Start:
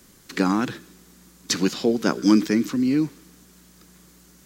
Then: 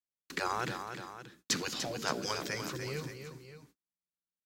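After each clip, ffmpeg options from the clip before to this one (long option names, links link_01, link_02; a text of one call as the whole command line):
ffmpeg -i in.wav -af "afftfilt=real='re*lt(hypot(re,im),0.316)':imag='im*lt(hypot(re,im),0.316)':win_size=1024:overlap=0.75,agate=range=-51dB:threshold=-41dB:ratio=16:detection=peak,aecho=1:1:295|574:0.398|0.224,volume=-6dB" out.wav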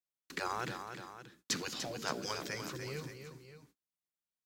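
ffmpeg -i in.wav -af "acrusher=bits=8:mode=log:mix=0:aa=0.000001,volume=-3.5dB" out.wav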